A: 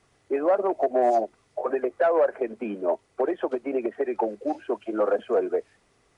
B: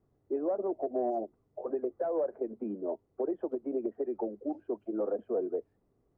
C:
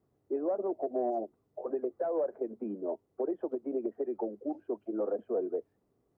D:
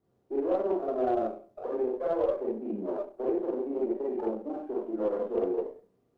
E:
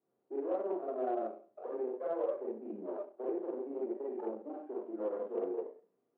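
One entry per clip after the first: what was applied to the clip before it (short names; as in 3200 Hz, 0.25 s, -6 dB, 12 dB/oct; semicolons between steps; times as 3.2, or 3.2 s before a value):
EQ curve 330 Hz 0 dB, 1000 Hz -12 dB, 2400 Hz -26 dB; gain -4.5 dB
HPF 120 Hz 6 dB/oct
Schroeder reverb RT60 0.43 s, combs from 32 ms, DRR -5.5 dB; added harmonics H 8 -35 dB, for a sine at -13.5 dBFS; running maximum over 5 samples; gain -2.5 dB
BPF 270–2300 Hz; gain -6.5 dB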